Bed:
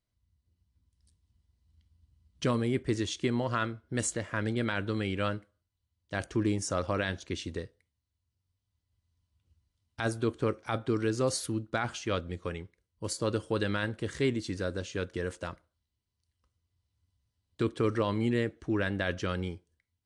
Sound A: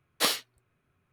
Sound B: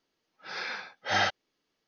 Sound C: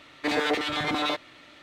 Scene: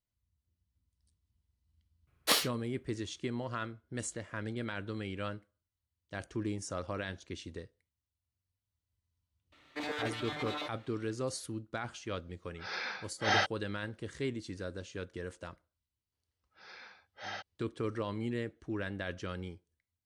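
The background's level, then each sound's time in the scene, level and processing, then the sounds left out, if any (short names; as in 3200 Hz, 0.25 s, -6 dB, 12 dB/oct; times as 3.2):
bed -7.5 dB
2.07 add A -2 dB
9.52 add C -12 dB
12.16 add B -2.5 dB
16.12 add B -16 dB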